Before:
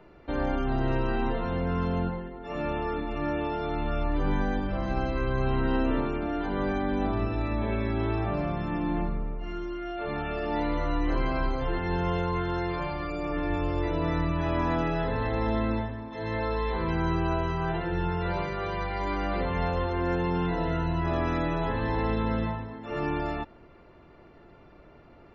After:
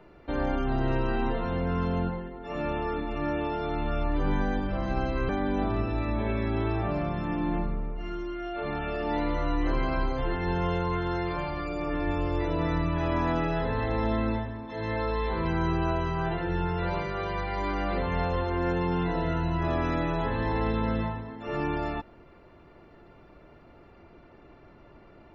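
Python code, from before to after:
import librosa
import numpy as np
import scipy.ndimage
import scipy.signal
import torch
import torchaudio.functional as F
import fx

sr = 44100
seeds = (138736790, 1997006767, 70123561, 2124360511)

y = fx.edit(x, sr, fx.cut(start_s=5.29, length_s=1.43), tone=tone)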